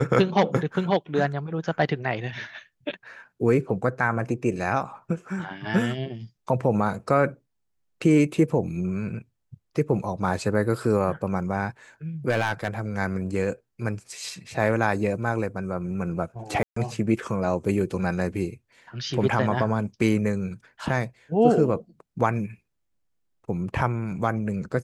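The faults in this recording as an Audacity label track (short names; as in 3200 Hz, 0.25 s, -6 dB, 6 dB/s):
12.290000	12.800000	clipped -17.5 dBFS
16.630000	16.760000	gap 0.134 s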